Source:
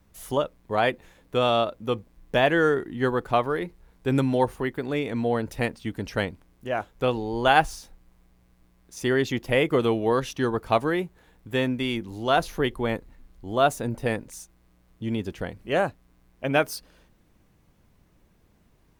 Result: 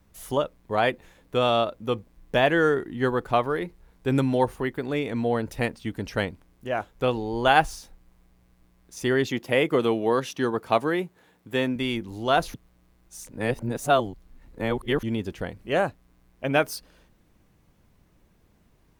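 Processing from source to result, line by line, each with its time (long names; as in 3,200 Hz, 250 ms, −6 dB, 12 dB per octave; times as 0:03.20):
0:09.27–0:11.76: high-pass filter 140 Hz
0:12.54–0:15.03: reverse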